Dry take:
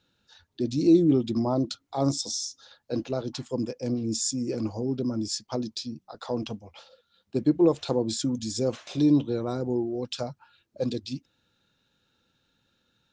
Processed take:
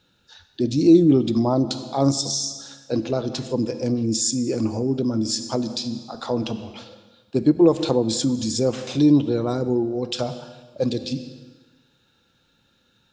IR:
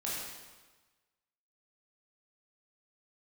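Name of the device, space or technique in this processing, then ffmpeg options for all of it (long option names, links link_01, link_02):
ducked reverb: -filter_complex "[0:a]asplit=3[link_01][link_02][link_03];[1:a]atrim=start_sample=2205[link_04];[link_02][link_04]afir=irnorm=-1:irlink=0[link_05];[link_03]apad=whole_len=578777[link_06];[link_05][link_06]sidechaincompress=threshold=-34dB:ratio=4:attack=16:release=101,volume=-9dB[link_07];[link_01][link_07]amix=inputs=2:normalize=0,volume=5dB"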